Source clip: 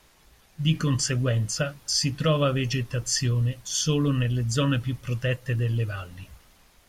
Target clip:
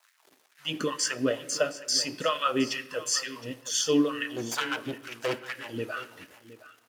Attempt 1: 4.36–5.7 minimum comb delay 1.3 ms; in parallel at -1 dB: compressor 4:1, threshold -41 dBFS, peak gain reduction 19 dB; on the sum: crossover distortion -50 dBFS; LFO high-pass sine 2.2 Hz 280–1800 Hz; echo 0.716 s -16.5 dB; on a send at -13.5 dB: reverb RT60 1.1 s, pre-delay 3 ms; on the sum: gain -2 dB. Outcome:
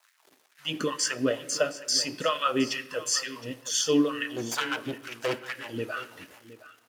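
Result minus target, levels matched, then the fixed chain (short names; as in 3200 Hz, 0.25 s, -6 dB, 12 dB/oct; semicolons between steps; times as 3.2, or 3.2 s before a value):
compressor: peak gain reduction -6.5 dB
4.36–5.7 minimum comb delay 1.3 ms; in parallel at -1 dB: compressor 4:1, threshold -49.5 dBFS, peak gain reduction 25.5 dB; on the sum: crossover distortion -50 dBFS; LFO high-pass sine 2.2 Hz 280–1800 Hz; echo 0.716 s -16.5 dB; on a send at -13.5 dB: reverb RT60 1.1 s, pre-delay 3 ms; on the sum: gain -2 dB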